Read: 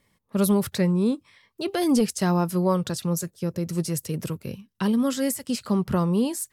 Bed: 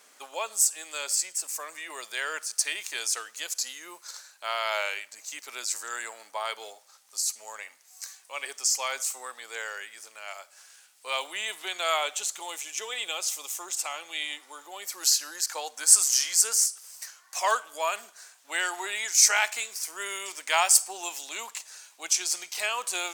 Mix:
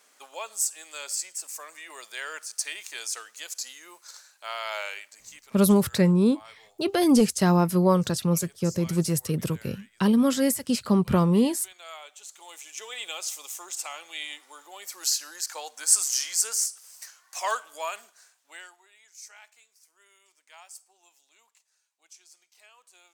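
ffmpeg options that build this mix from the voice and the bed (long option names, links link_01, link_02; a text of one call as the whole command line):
ffmpeg -i stem1.wav -i stem2.wav -filter_complex "[0:a]adelay=5200,volume=2dB[link_01];[1:a]volume=9.5dB,afade=type=out:start_time=5.06:duration=0.54:silence=0.237137,afade=type=in:start_time=12.17:duration=0.85:silence=0.211349,afade=type=out:start_time=17.72:duration=1.06:silence=0.0630957[link_02];[link_01][link_02]amix=inputs=2:normalize=0" out.wav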